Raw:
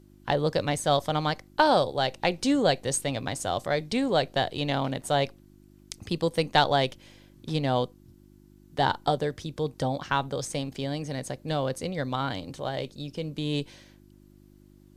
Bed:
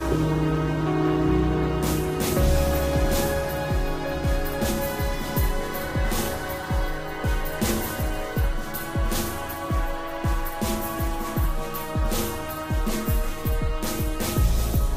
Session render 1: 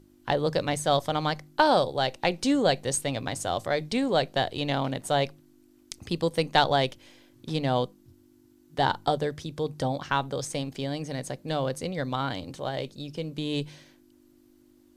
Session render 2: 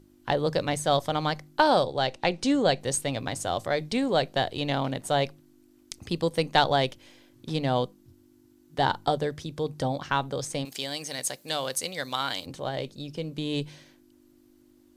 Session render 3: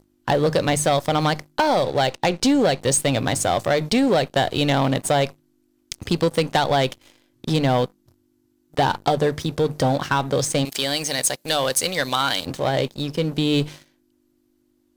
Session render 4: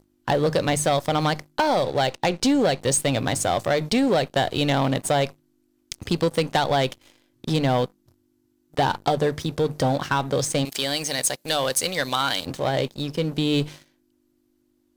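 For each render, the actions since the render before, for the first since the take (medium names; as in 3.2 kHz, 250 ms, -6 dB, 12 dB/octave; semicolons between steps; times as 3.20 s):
de-hum 50 Hz, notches 4
1.83–2.81 s: low-pass 8.3 kHz; 10.65–12.46 s: tilt EQ +4 dB/octave
compression 6:1, threshold -24 dBFS, peak gain reduction 9 dB; waveshaping leveller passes 3
trim -2 dB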